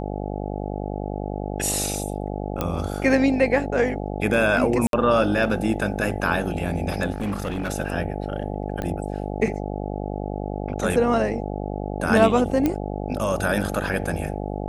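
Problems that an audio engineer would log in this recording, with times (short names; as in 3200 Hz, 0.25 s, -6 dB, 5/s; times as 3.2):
buzz 50 Hz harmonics 17 -29 dBFS
2.61 pop -10 dBFS
4.87–4.93 gap 62 ms
7.12–7.7 clipped -22.5 dBFS
8.82 pop -16 dBFS
12.66 pop -9 dBFS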